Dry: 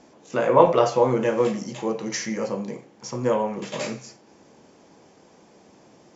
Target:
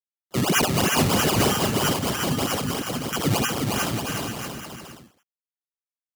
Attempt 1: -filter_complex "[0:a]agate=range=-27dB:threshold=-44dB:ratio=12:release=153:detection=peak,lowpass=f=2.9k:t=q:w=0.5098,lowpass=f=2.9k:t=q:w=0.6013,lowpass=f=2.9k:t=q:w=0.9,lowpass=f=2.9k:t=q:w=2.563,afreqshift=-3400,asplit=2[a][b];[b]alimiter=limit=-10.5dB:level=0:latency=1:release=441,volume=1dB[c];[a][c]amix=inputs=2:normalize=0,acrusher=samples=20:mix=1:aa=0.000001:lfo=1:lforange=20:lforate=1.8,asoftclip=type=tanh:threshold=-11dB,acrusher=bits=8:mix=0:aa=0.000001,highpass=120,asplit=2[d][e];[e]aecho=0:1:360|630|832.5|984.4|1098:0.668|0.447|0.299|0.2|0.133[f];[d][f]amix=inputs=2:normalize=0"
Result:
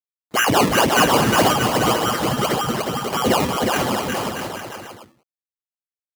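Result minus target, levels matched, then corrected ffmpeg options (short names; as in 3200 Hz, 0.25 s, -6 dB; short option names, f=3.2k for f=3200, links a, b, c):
1000 Hz band +4.0 dB; decimation with a swept rate: distortion +4 dB
-filter_complex "[0:a]agate=range=-27dB:threshold=-44dB:ratio=12:release=153:detection=peak,lowpass=f=2.9k:t=q:w=0.5098,lowpass=f=2.9k:t=q:w=0.6013,lowpass=f=2.9k:t=q:w=0.9,lowpass=f=2.9k:t=q:w=2.563,afreqshift=-3400,asplit=2[a][b];[b]alimiter=limit=-10.5dB:level=0:latency=1:release=441,volume=1dB[c];[a][c]amix=inputs=2:normalize=0,acrusher=samples=20:mix=1:aa=0.000001:lfo=1:lforange=20:lforate=3.1,asoftclip=type=tanh:threshold=-11dB,acrusher=bits=8:mix=0:aa=0.000001,highpass=120,equalizer=f=870:w=0.39:g=-8,asplit=2[d][e];[e]aecho=0:1:360|630|832.5|984.4|1098:0.668|0.447|0.299|0.2|0.133[f];[d][f]amix=inputs=2:normalize=0"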